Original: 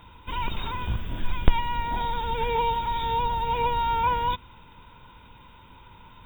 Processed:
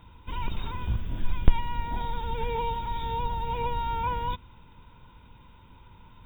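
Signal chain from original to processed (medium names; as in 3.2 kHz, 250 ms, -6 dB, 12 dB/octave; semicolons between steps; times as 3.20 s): bass shelf 350 Hz +7.5 dB; trim -7 dB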